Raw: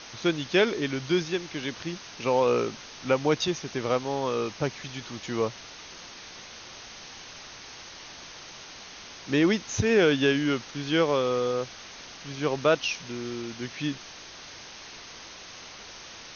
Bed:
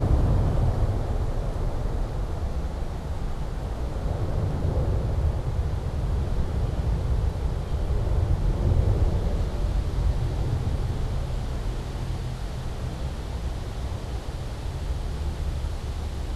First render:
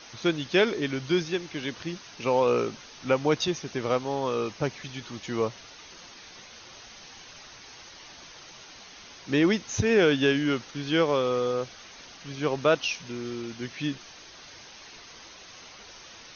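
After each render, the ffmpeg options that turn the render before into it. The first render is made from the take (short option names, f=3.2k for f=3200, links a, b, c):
-af "afftdn=nr=6:nf=-45"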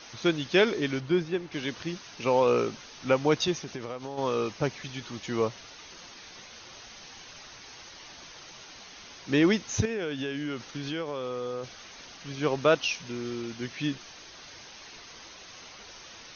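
-filter_complex "[0:a]asettb=1/sr,asplit=3[a][b][c];[a]atrim=end=1.004[d];[b]atrim=start=1:end=1.52,asetpts=PTS-STARTPTS,afade=t=in:d=0.004:c=qsin,afade=t=out:st=0.516:d=0.004:c=qsin,lowpass=f=1.5k:p=1[e];[c]atrim=start=1.516[f];[d][e]acrossfade=d=0.004:c1=hsin:c2=qsin[g];[g][f]acrossfade=d=0.004:c1=qsin:c2=hsin,asplit=3[h][i][j];[h]afade=t=out:st=3.58:d=0.02[k];[i]acompressor=threshold=-32dB:ratio=6:attack=3.2:release=140:knee=1:detection=peak,afade=t=in:st=3.58:d=0.02,afade=t=out:st=4.17:d=0.02[l];[j]afade=t=in:st=4.17:d=0.02[m];[k][l][m]amix=inputs=3:normalize=0,asettb=1/sr,asplit=3[n][o][p];[n]atrim=end=9.854[q];[o]atrim=start=9.85:end=11.64,asetpts=PTS-STARTPTS,afade=t=in:d=0.004:c=qsin,afade=t=out:st=1.786:d=0.004:c=qsin,acompressor=threshold=-30dB:ratio=5:attack=3.2:release=140:knee=1:detection=peak[r];[p]atrim=start=11.636[s];[q][r]acrossfade=d=0.004:c1=hsin:c2=qsin[t];[t][s]acrossfade=d=0.004:c1=qsin:c2=hsin"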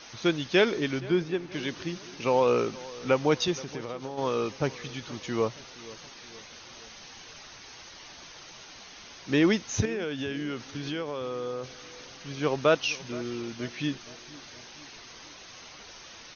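-filter_complex "[0:a]asplit=2[a][b];[b]adelay=472,lowpass=f=2.1k:p=1,volume=-19dB,asplit=2[c][d];[d]adelay=472,lowpass=f=2.1k:p=1,volume=0.53,asplit=2[e][f];[f]adelay=472,lowpass=f=2.1k:p=1,volume=0.53,asplit=2[g][h];[h]adelay=472,lowpass=f=2.1k:p=1,volume=0.53[i];[a][c][e][g][i]amix=inputs=5:normalize=0"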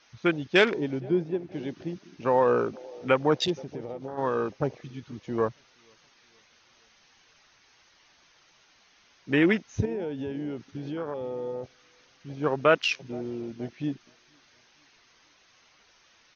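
-af "afwtdn=0.0251,equalizer=f=1.8k:w=0.68:g=5"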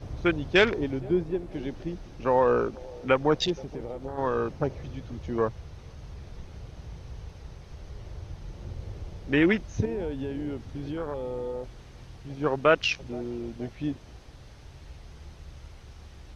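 -filter_complex "[1:a]volume=-16.5dB[a];[0:a][a]amix=inputs=2:normalize=0"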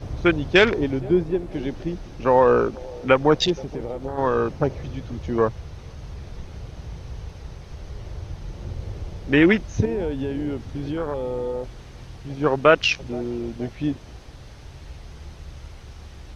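-af "volume=6dB,alimiter=limit=-2dB:level=0:latency=1"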